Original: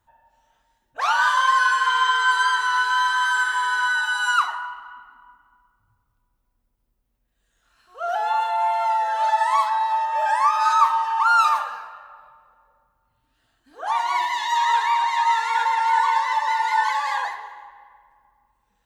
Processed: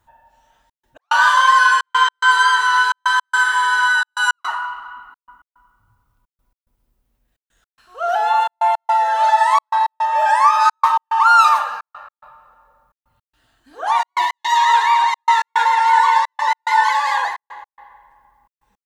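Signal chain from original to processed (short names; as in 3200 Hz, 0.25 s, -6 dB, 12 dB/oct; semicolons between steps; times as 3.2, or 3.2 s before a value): step gate "xxxxx.x." 108 bpm -60 dB; gain +6 dB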